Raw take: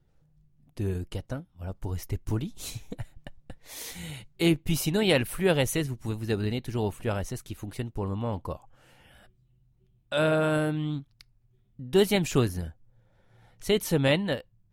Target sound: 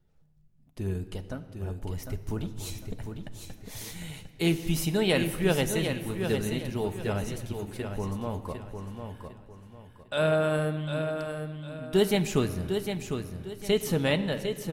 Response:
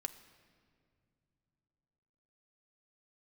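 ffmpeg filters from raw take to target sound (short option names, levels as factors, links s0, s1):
-filter_complex "[0:a]aecho=1:1:753|1506|2259|3012:0.447|0.138|0.0429|0.0133[s0];[1:a]atrim=start_sample=2205[s1];[s0][s1]afir=irnorm=-1:irlink=0"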